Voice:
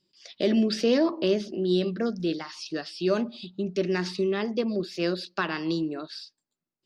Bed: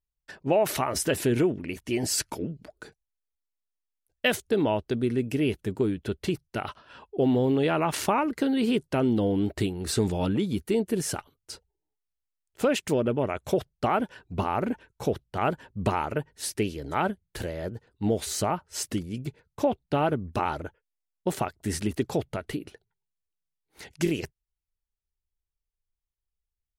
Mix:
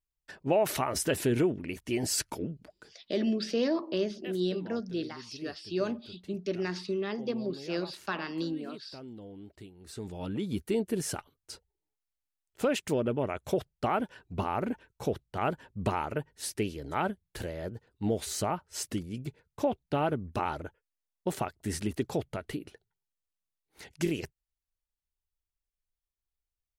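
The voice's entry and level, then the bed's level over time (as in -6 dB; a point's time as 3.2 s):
2.70 s, -6.0 dB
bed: 2.52 s -3 dB
3.36 s -21.5 dB
9.72 s -21.5 dB
10.55 s -4 dB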